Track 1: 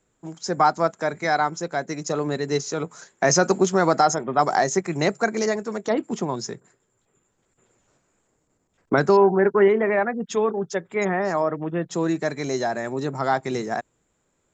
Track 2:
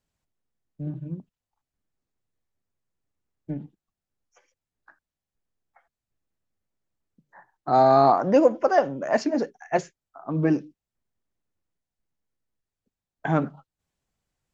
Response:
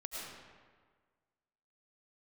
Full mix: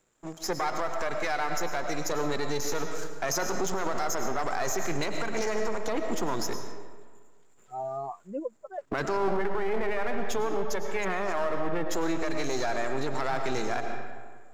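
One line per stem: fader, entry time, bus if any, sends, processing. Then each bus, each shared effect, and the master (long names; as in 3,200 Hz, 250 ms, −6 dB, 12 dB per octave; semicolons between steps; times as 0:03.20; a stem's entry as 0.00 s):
+1.5 dB, 0.00 s, send −3.5 dB, gain on one half-wave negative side −12 dB; low-shelf EQ 300 Hz −7.5 dB; brickwall limiter −18 dBFS, peak gain reduction 9.5 dB
−13.5 dB, 0.00 s, no send, spectral dynamics exaggerated over time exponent 3; low-pass filter 1,300 Hz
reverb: on, RT60 1.6 s, pre-delay 65 ms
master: brickwall limiter −18 dBFS, peak gain reduction 8.5 dB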